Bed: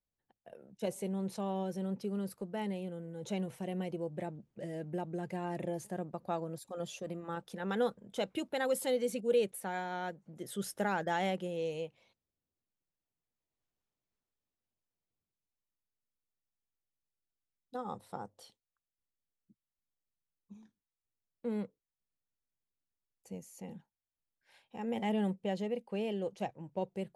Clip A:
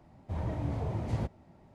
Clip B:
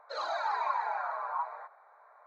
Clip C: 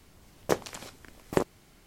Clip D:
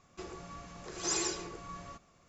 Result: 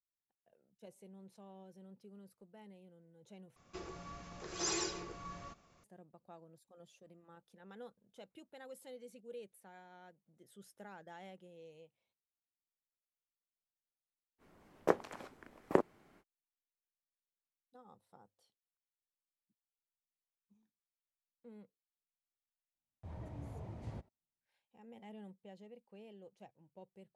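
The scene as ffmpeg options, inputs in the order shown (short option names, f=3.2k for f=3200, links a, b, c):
-filter_complex "[0:a]volume=-19.5dB[a];[4:a]lowpass=f=6.9k:w=0.5412,lowpass=f=6.9k:w=1.3066[b];[3:a]acrossover=split=180 2100:gain=0.224 1 0.178[c][d][e];[c][d][e]amix=inputs=3:normalize=0[f];[1:a]agate=range=-34dB:threshold=-50dB:ratio=16:release=71:detection=rms[g];[a]asplit=2[h][i];[h]atrim=end=3.564[j];[b]atrim=end=2.28,asetpts=PTS-STARTPTS,volume=-2.5dB[k];[i]atrim=start=5.836[l];[f]atrim=end=1.86,asetpts=PTS-STARTPTS,volume=-3dB,afade=t=in:d=0.05,afade=t=out:st=1.81:d=0.05,adelay=14380[m];[g]atrim=end=1.74,asetpts=PTS-STARTPTS,volume=-13.5dB,afade=t=in:d=0.004:c=hsin,afade=t=out:st=1.736:d=0.004:c=hsin,adelay=22740[n];[j][k]acrossfade=d=0.004:c1=hsin:c2=hsin[o];[o][l]acrossfade=d=0.004:c1=hsin:c2=hsin[p];[p][m][n]amix=inputs=3:normalize=0"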